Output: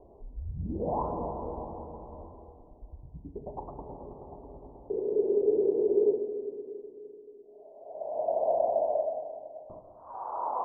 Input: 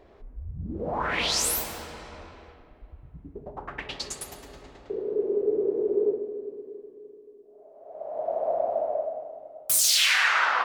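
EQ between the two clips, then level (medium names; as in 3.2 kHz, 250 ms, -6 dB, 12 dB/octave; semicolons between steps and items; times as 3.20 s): steep low-pass 1 kHz 72 dB/octave; 0.0 dB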